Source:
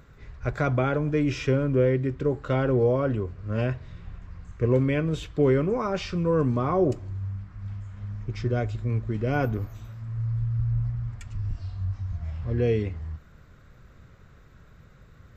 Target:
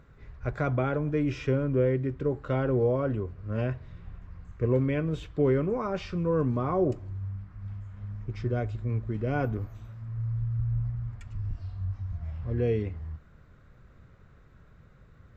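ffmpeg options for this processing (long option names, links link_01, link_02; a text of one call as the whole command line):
ffmpeg -i in.wav -af "highshelf=frequency=3500:gain=-9,volume=-3dB" out.wav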